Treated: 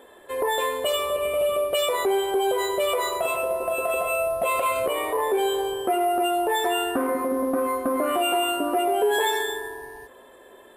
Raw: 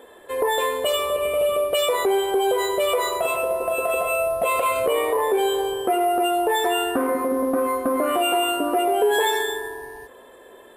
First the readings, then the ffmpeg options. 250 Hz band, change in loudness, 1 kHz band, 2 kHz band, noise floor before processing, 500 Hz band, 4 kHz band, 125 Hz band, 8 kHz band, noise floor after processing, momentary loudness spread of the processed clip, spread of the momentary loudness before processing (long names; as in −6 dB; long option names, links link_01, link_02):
−2.0 dB, −2.0 dB, −2.0 dB, −2.0 dB, −47 dBFS, −2.5 dB, −2.0 dB, can't be measured, −2.0 dB, −50 dBFS, 4 LU, 3 LU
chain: -af "bandreject=frequency=470:width=13,volume=-2dB"